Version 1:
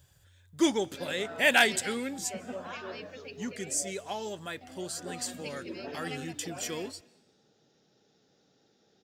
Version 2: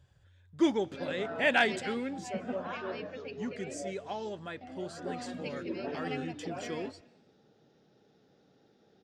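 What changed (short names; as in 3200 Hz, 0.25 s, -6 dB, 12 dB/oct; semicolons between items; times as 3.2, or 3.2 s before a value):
background +4.5 dB; master: add tape spacing loss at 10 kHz 21 dB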